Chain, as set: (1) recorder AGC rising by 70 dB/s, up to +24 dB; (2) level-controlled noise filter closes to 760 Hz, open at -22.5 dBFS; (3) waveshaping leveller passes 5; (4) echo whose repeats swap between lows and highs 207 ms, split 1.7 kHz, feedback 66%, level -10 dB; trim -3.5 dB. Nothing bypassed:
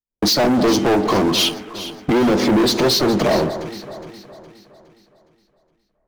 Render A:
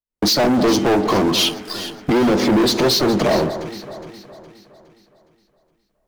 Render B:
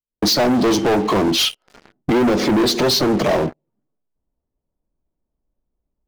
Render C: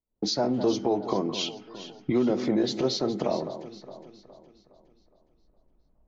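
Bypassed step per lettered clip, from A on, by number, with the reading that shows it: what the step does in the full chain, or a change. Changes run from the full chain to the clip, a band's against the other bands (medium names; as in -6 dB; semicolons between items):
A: 2, momentary loudness spread change -1 LU; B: 4, crest factor change -2.5 dB; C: 3, crest factor change +8.5 dB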